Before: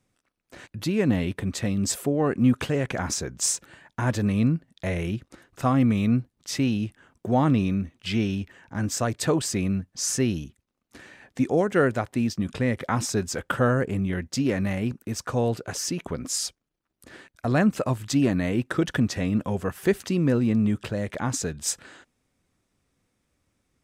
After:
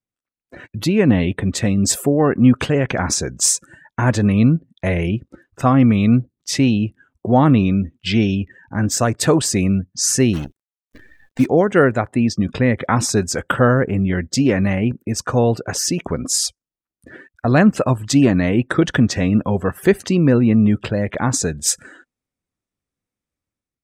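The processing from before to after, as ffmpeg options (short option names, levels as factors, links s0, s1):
-filter_complex "[0:a]asettb=1/sr,asplit=3[s0][s1][s2];[s0]atrim=end=10.334[s3];[s1]atrim=start=10.33:end=11.46,asetpts=PTS-STARTPTS,afade=t=in:d=0.004:c=qsin,afade=t=out:st=1.126:d=0.004:c=qsin,acrusher=bits=7:dc=4:mix=0:aa=0.000001[s4];[s2]atrim=start=11.456[s5];[s3][s4]acrossfade=d=0.004:c1=hsin:c2=qsin[s6];[s6][s5]acrossfade=d=0.004:c1=qsin:c2=hsin,highshelf=f=11000:g=3,afftdn=nr=22:nf=-46,dynaudnorm=f=100:g=7:m=2.11,volume=1.26"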